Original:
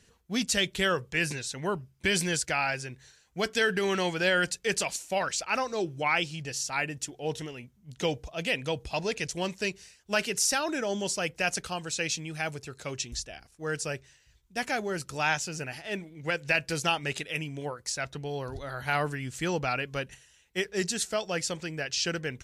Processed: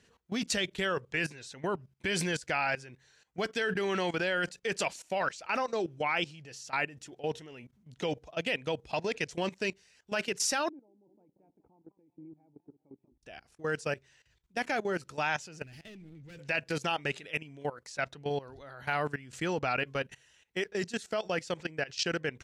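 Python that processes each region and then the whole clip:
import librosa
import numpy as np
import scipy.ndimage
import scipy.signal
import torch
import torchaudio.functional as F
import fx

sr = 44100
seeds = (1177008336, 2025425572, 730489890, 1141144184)

y = fx.chain(x, sr, fx.level_steps(step_db=21),
    fx.formant_cascade(vowel='u'),
    fx.echo_warbled(ms=190, feedback_pct=32, rate_hz=2.8, cents=196, wet_db=-15), at=(10.69, 13.23))
y = fx.chain(y, sr, fx.leveller(passes=5),
    fx.tone_stack(knobs='10-0-1'), at=(15.63, 16.39))
y = fx.lowpass(y, sr, hz=3200.0, slope=6)
y = fx.level_steps(y, sr, step_db=17)
y = fx.low_shelf(y, sr, hz=100.0, db=-11.0)
y = y * 10.0 ** (4.5 / 20.0)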